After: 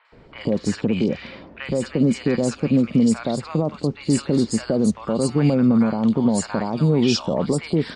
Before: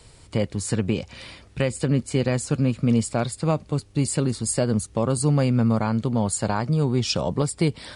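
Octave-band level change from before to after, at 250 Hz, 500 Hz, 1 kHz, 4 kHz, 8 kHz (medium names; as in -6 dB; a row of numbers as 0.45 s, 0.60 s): +5.5 dB, +3.0 dB, -0.5 dB, +1.5 dB, -3.5 dB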